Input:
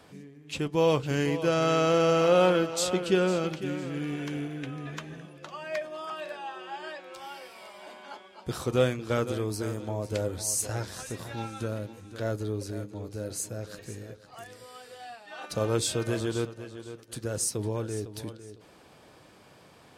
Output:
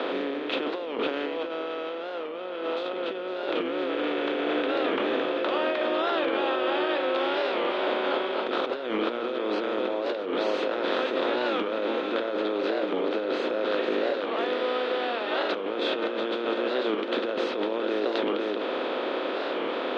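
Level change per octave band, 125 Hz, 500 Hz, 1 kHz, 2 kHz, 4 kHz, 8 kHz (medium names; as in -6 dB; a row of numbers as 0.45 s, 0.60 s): under -20 dB, +3.5 dB, +5.0 dB, +6.5 dB, +5.0 dB, under -25 dB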